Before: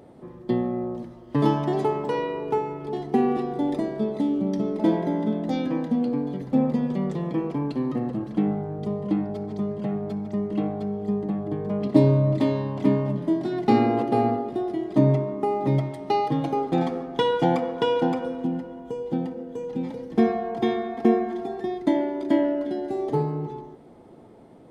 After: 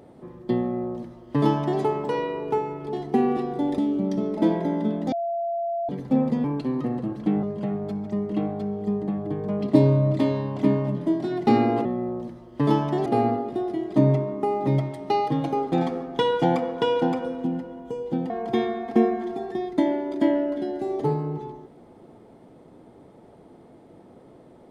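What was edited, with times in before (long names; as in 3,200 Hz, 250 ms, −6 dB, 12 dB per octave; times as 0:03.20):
0:00.60–0:01.81: duplicate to 0:14.06
0:03.78–0:04.20: remove
0:05.54–0:06.31: beep over 682 Hz −24 dBFS
0:06.86–0:07.55: remove
0:08.54–0:09.64: remove
0:19.30–0:20.39: remove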